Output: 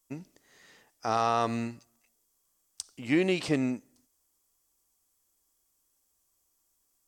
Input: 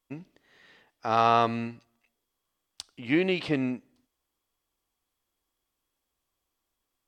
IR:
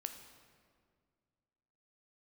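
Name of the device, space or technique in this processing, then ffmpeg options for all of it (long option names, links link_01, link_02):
over-bright horn tweeter: -af "highshelf=frequency=4800:width_type=q:width=1.5:gain=10.5,alimiter=limit=-14.5dB:level=0:latency=1:release=79"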